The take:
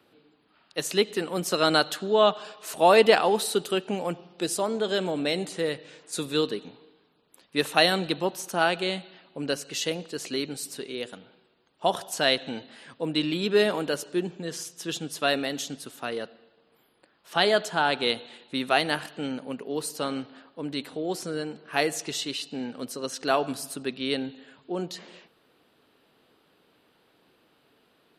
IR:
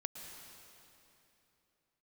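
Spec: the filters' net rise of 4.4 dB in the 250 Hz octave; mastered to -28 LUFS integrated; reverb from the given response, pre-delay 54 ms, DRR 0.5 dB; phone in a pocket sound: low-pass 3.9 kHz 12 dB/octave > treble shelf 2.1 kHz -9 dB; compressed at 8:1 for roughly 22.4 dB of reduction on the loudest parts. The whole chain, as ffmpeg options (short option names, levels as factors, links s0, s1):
-filter_complex "[0:a]equalizer=f=250:t=o:g=6,acompressor=threshold=0.0178:ratio=8,asplit=2[s0][s1];[1:a]atrim=start_sample=2205,adelay=54[s2];[s1][s2]afir=irnorm=-1:irlink=0,volume=1.12[s3];[s0][s3]amix=inputs=2:normalize=0,lowpass=3900,highshelf=f=2100:g=-9,volume=3.35"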